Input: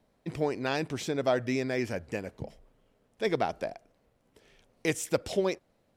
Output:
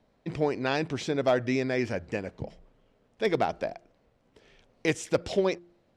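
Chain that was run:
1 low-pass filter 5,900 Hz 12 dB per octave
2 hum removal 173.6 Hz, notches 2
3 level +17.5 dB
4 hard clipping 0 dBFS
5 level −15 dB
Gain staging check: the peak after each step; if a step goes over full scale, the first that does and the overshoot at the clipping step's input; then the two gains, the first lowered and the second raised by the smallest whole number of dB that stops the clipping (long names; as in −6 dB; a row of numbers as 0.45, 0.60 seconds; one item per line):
−12.5, −13.0, +4.5, 0.0, −15.0 dBFS
step 3, 4.5 dB
step 3 +12.5 dB, step 5 −10 dB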